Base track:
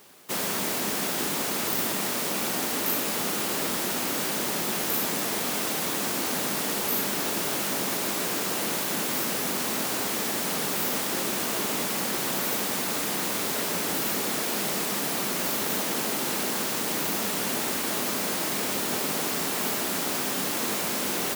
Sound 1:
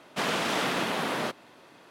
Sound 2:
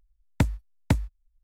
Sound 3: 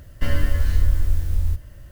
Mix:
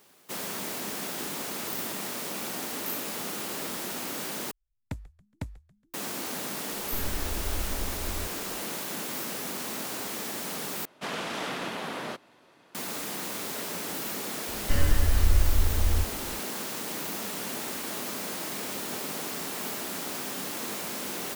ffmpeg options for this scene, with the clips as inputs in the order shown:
-filter_complex "[3:a]asplit=2[a][b];[0:a]volume=-6.5dB[c];[2:a]asplit=4[d][e][f][g];[e]adelay=139,afreqshift=-130,volume=-21dB[h];[f]adelay=278,afreqshift=-260,volume=-27.9dB[i];[g]adelay=417,afreqshift=-390,volume=-34.9dB[j];[d][h][i][j]amix=inputs=4:normalize=0[k];[c]asplit=3[l][m][n];[l]atrim=end=4.514[o];[k]atrim=end=1.43,asetpts=PTS-STARTPTS,volume=-14dB[p];[m]atrim=start=5.936:end=10.854[q];[1:a]atrim=end=1.9,asetpts=PTS-STARTPTS,volume=-5.5dB[r];[n]atrim=start=12.746[s];[a]atrim=end=1.91,asetpts=PTS-STARTPTS,volume=-15.5dB,afade=t=in:d=0.004:c=hsin,afade=t=out:st=1.906:d=0.004:c=hsin,adelay=6710[t];[b]atrim=end=1.91,asetpts=PTS-STARTPTS,volume=-3.5dB,afade=t=in:d=0.004:c=hsin,afade=t=out:st=1.906:d=0.004:c=hsin,adelay=14480[u];[o][p]acrossfade=d=0.004:c1=hsin:c2=hsin[v];[v][q]acrossfade=d=0.004:c1=hsin:c2=hsin[w];[w][r]acrossfade=d=0.004:c1=hsin:c2=hsin[x];[x][s]acrossfade=d=0.004:c1=hsin:c2=hsin[y];[y][t][u]amix=inputs=3:normalize=0"

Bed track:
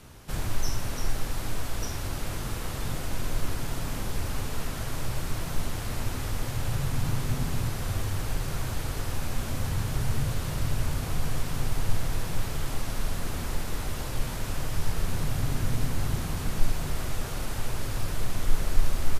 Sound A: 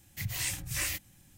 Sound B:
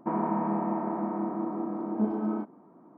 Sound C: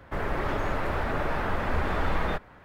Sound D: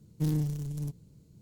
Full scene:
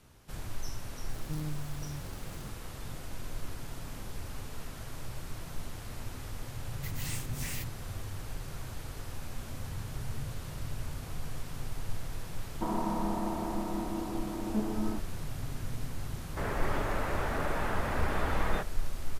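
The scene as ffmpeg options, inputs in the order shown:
-filter_complex "[0:a]volume=-10dB[a];[4:a]aeval=exprs='val(0)+0.5*0.0211*sgn(val(0))':c=same[b];[1:a]asoftclip=type=hard:threshold=-32.5dB[c];[b]atrim=end=1.41,asetpts=PTS-STARTPTS,volume=-10.5dB,afade=t=in:d=0.004:c=hsin,afade=t=out:st=1.406:d=0.004:c=hsin,adelay=1090[d];[c]atrim=end=1.37,asetpts=PTS-STARTPTS,volume=-4.5dB,afade=t=in:d=0.004:c=hsin,afade=t=out:st=1.366:d=0.004:c=hsin,adelay=293706S[e];[2:a]atrim=end=2.97,asetpts=PTS-STARTPTS,volume=-4.5dB,afade=t=in:d=0.004:c=hsin,afade=t=out:st=2.966:d=0.004:c=hsin,adelay=12550[f];[3:a]atrim=end=2.64,asetpts=PTS-STARTPTS,volume=-4dB,afade=t=in:d=0.004:c=hsin,afade=t=out:st=2.636:d=0.004:c=hsin,adelay=16250[g];[a][d][e][f][g]amix=inputs=5:normalize=0"

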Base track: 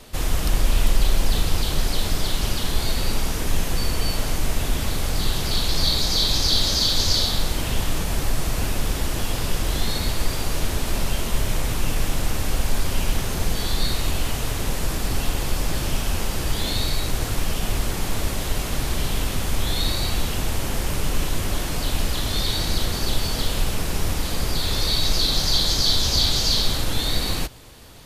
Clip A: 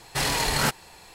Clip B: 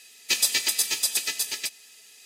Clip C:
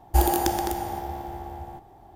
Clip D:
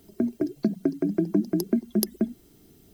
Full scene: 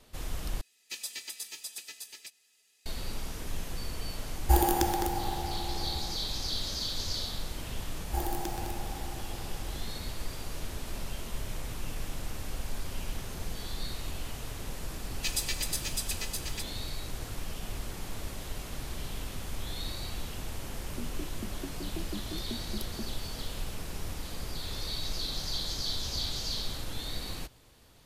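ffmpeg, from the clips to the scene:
-filter_complex "[2:a]asplit=2[a][b];[3:a]asplit=2[c][d];[0:a]volume=-14dB[e];[c]bandreject=f=650:w=6.3[f];[e]asplit=2[g][h];[g]atrim=end=0.614[i];[a]atrim=end=2.25,asetpts=PTS-STARTPTS,volume=-16.5dB[j];[h]atrim=start=2.856[k];[f]atrim=end=2.15,asetpts=PTS-STARTPTS,volume=-3dB,afade=t=in:d=0.004:c=hsin,afade=t=out:st=2.146:d=0.004:c=hsin,adelay=4350[l];[d]atrim=end=2.15,asetpts=PTS-STARTPTS,volume=-13dB,afade=t=in:d=0.004:c=hsin,afade=t=out:st=2.146:d=0.004:c=hsin,adelay=7990[m];[b]atrim=end=2.25,asetpts=PTS-STARTPTS,volume=-10dB,afade=t=in:d=0.004:c=hsin,afade=t=out:st=2.246:d=0.004:c=hsin,adelay=14940[n];[4:a]atrim=end=2.93,asetpts=PTS-STARTPTS,volume=-17dB,afade=t=in:d=0.004:c=hsin,afade=t=out:st=2.926:d=0.004:c=hsin,adelay=20780[o];[i][j]acrossfade=d=0.004:c1=hsin:c2=hsin[p];[p][k]acrossfade=d=0.004:c1=hsin:c2=hsin[q];[q][l][m][n][o]amix=inputs=5:normalize=0"

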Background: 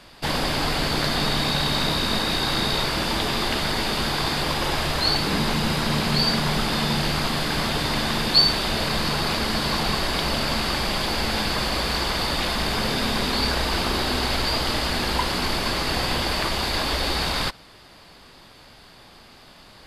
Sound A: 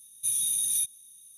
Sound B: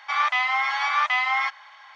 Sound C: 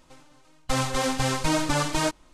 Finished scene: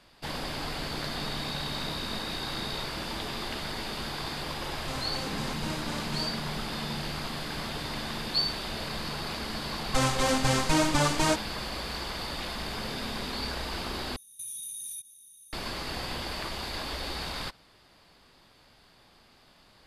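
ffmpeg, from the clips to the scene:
-filter_complex "[3:a]asplit=2[a][b];[0:a]volume=-11dB[c];[1:a]acompressor=threshold=-31dB:ratio=12:attack=0.35:release=149:knee=1:detection=peak[d];[c]asplit=2[e][f];[e]atrim=end=14.164[g];[d]atrim=end=1.37,asetpts=PTS-STARTPTS,volume=-1.5dB[h];[f]atrim=start=15.526[i];[a]atrim=end=2.33,asetpts=PTS-STARTPTS,volume=-14.5dB,afade=t=in:d=0.004:c=hsin,afade=t=out:st=2.326:d=0.004:c=hsin,adelay=4180[j];[b]atrim=end=2.33,asetpts=PTS-STARTPTS,volume=-0.5dB,afade=t=in:d=0.004:c=hsin,afade=t=out:st=2.326:d=0.004:c=hsin,adelay=9250[k];[g][h]acrossfade=d=0.004:c1=hsin:c2=hsin[l];[l][i]acrossfade=d=0.004:c1=hsin:c2=hsin[m];[m][j][k]amix=inputs=3:normalize=0"

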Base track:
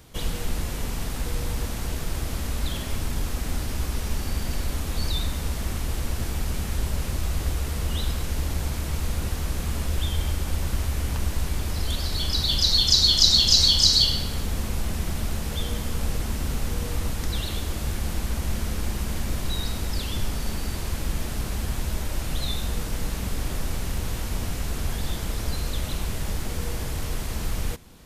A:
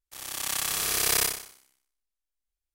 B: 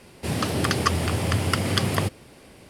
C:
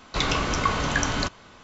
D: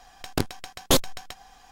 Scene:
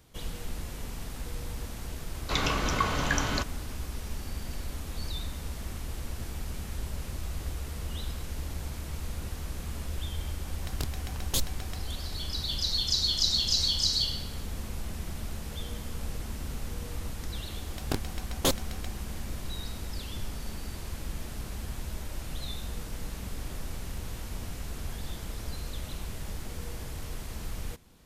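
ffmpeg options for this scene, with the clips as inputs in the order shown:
-filter_complex "[4:a]asplit=2[a][b];[0:a]volume=-9dB[c];[a]acrossover=split=160|3000[d][e][f];[e]acompressor=threshold=-31dB:ratio=6:attack=3.2:release=140:knee=2.83:detection=peak[g];[d][g][f]amix=inputs=3:normalize=0[h];[3:a]atrim=end=1.63,asetpts=PTS-STARTPTS,volume=-4dB,afade=t=in:d=0.004:c=hsin,afade=t=out:st=1.626:d=0.004:c=hsin,adelay=2150[i];[h]atrim=end=1.71,asetpts=PTS-STARTPTS,volume=-6dB,afade=t=in:d=0.004:c=hsin,afade=t=out:st=1.706:d=0.004:c=hsin,adelay=10430[j];[b]atrim=end=1.71,asetpts=PTS-STARTPTS,volume=-6dB,afade=t=in:d=0.004:c=hsin,afade=t=out:st=1.706:d=0.004:c=hsin,adelay=17540[k];[c][i][j][k]amix=inputs=4:normalize=0"

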